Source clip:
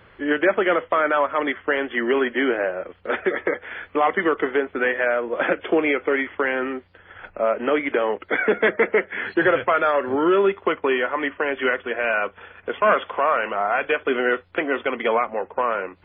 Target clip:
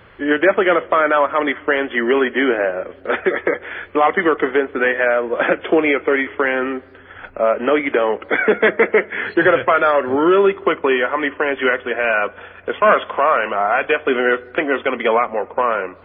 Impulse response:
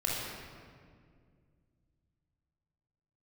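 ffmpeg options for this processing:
-filter_complex "[0:a]asplit=2[s0][s1];[1:a]atrim=start_sample=2205,lowpass=2300[s2];[s1][s2]afir=irnorm=-1:irlink=0,volume=0.0355[s3];[s0][s3]amix=inputs=2:normalize=0,volume=1.68"

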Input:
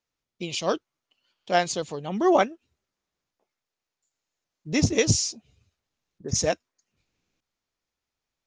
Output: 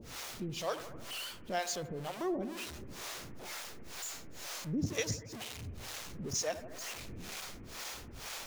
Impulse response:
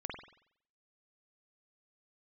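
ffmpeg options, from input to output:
-filter_complex "[0:a]aeval=exprs='val(0)+0.5*0.0447*sgn(val(0))':c=same,acrossover=split=430[s0][s1];[s0]aeval=exprs='val(0)*(1-1/2+1/2*cos(2*PI*2.1*n/s))':c=same[s2];[s1]aeval=exprs='val(0)*(1-1/2-1/2*cos(2*PI*2.1*n/s))':c=same[s3];[s2][s3]amix=inputs=2:normalize=0,asplit=2[s4][s5];[1:a]atrim=start_sample=2205,asetrate=26460,aresample=44100[s6];[s5][s6]afir=irnorm=-1:irlink=0,volume=0.224[s7];[s4][s7]amix=inputs=2:normalize=0,acompressor=threshold=0.0355:ratio=1.5,volume=0.398"

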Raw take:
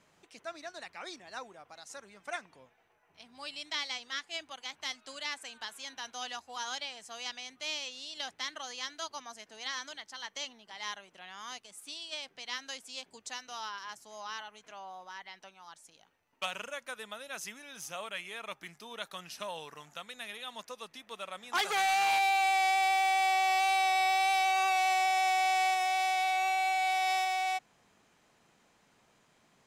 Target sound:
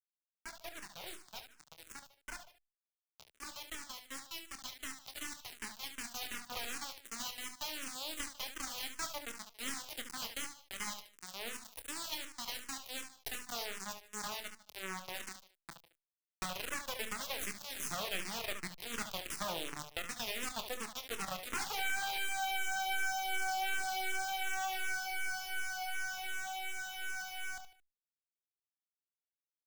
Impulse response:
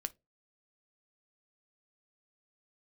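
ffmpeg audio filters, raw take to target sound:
-filter_complex "[0:a]acompressor=threshold=0.01:ratio=6,bandreject=f=1000:w=15,acrusher=bits=4:dc=4:mix=0:aa=0.000001,aecho=1:1:150:0.126,dynaudnorm=f=320:g=31:m=2.24,asettb=1/sr,asplit=3[s0][s1][s2];[s0]atrim=end=4.294[s3];[s1]atrim=start=4.29:end=6.52,asetpts=PTS-STARTPTS,afade=t=in:d=0.004:c=qsin,afade=t=out:st=2.226:d=0.004:c=qsin,equalizer=f=520:w=4.9:g=-9.5[s4];[s2]atrim=start=6.516[s5];[s3][s4]acrossfade=d=0.004:c1=hsin:c2=qsin[s6];[s6][s5]acrossfade=d=0.004:c1=qsin:c2=hsin,aecho=1:1:26|71:0.335|0.376,asplit=2[s7][s8];[s8]afreqshift=-2.7[s9];[s7][s9]amix=inputs=2:normalize=1,volume=1.33"

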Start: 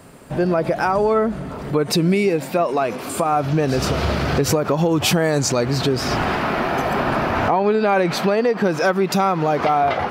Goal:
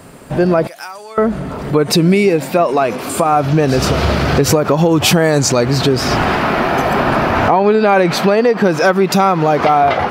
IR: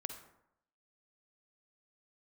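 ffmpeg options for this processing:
-filter_complex "[0:a]asettb=1/sr,asplit=3[s0][s1][s2];[s0]atrim=end=0.674[s3];[s1]atrim=start=0.67:end=1.18,asetpts=PTS-STARTPTS,afade=t=in:d=0.004:c=qsin,afade=t=out:st=0.506:d=0.004:c=qsin,aderivative[s4];[s2]atrim=start=1.176[s5];[s3][s4]acrossfade=d=0.004:c1=hsin:c2=qsin[s6];[s6][s5]acrossfade=d=0.004:c1=qsin:c2=hsin,volume=2"

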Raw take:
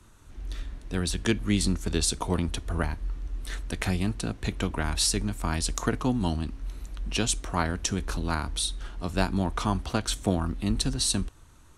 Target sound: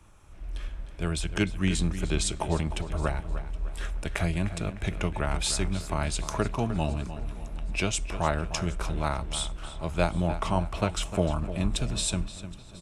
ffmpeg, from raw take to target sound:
-filter_complex "[0:a]equalizer=f=5300:t=o:w=1.7:g=-5.5,asplit=2[s0][s1];[s1]adelay=279,lowpass=f=4700:p=1,volume=0.266,asplit=2[s2][s3];[s3]adelay=279,lowpass=f=4700:p=1,volume=0.41,asplit=2[s4][s5];[s5]adelay=279,lowpass=f=4700:p=1,volume=0.41,asplit=2[s6][s7];[s7]adelay=279,lowpass=f=4700:p=1,volume=0.41[s8];[s2][s4][s6][s8]amix=inputs=4:normalize=0[s9];[s0][s9]amix=inputs=2:normalize=0,asetrate=40517,aresample=44100,equalizer=f=250:t=o:w=0.33:g=-9,equalizer=f=630:t=o:w=0.33:g=5,equalizer=f=2500:t=o:w=0.33:g=5,asplit=2[s10][s11];[s11]aecho=0:1:770|1540|2310:0.0841|0.0294|0.0103[s12];[s10][s12]amix=inputs=2:normalize=0"

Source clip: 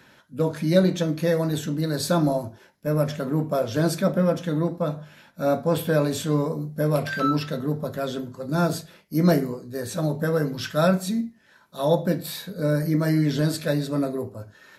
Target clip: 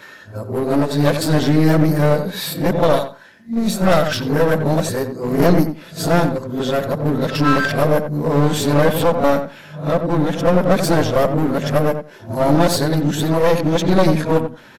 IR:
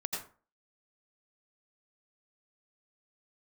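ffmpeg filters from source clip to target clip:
-filter_complex "[0:a]areverse,bass=f=250:g=-2,treble=f=4000:g=-3,aeval=exprs='clip(val(0),-1,0.0355)':c=same,asplit=2[s0][s1];[s1]adelay=89,lowpass=f=1700:p=1,volume=0.398,asplit=2[s2][s3];[s3]adelay=89,lowpass=f=1700:p=1,volume=0.16,asplit=2[s4][s5];[s5]adelay=89,lowpass=f=1700:p=1,volume=0.16[s6];[s2][s4][s6]amix=inputs=3:normalize=0[s7];[s0][s7]amix=inputs=2:normalize=0,alimiter=level_in=3.76:limit=0.891:release=50:level=0:latency=1,volume=0.891"

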